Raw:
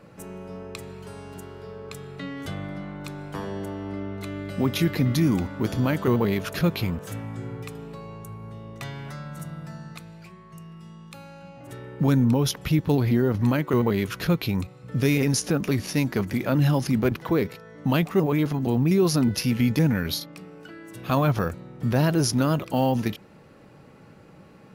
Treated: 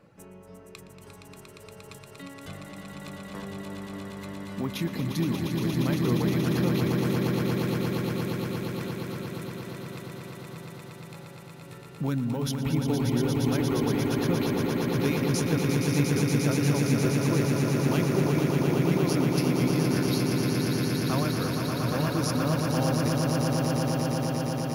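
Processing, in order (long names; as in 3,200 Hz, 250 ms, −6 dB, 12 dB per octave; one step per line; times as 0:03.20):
reverb reduction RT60 0.66 s
echo that builds up and dies away 117 ms, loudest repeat 8, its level −5.5 dB
level −7.5 dB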